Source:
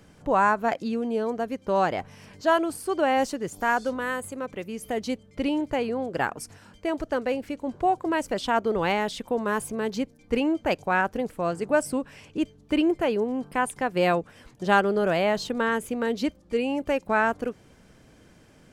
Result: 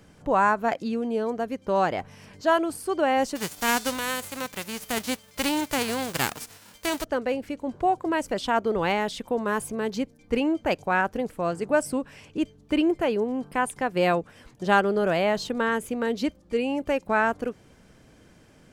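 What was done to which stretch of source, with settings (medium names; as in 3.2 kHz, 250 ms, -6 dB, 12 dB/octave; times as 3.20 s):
3.35–7.03 s: formants flattened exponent 0.3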